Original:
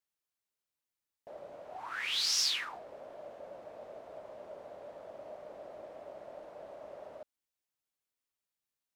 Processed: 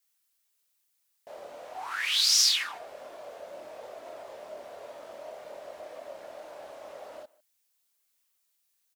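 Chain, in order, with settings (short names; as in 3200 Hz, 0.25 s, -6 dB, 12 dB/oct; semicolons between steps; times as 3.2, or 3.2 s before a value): chorus voices 6, 0.51 Hz, delay 26 ms, depth 2.2 ms; in parallel at +3 dB: compressor, threshold -44 dBFS, peak gain reduction 13.5 dB; on the sum: tilt +3 dB/oct; speakerphone echo 0.15 s, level -22 dB; gain +1.5 dB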